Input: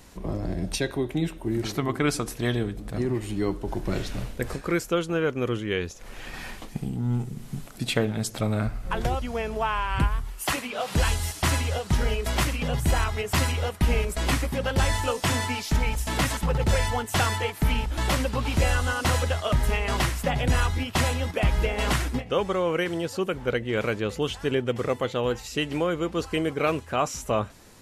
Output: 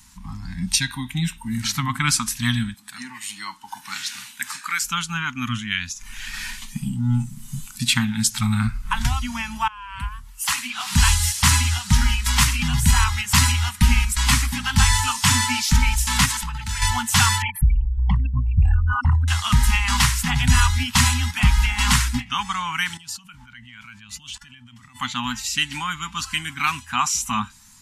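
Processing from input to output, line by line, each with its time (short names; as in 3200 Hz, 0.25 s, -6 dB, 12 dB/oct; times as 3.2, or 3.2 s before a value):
2.74–4.81 HPF 410 Hz
9.68–11.03 fade in, from -23 dB
16.25–16.82 compressor, threshold -27 dBFS
17.42–19.28 formant sharpening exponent 3
22.97–24.96 level quantiser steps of 21 dB
whole clip: elliptic band-stop 240–900 Hz, stop band 40 dB; spectral noise reduction 9 dB; bell 7000 Hz +6.5 dB 1.7 oct; gain +7 dB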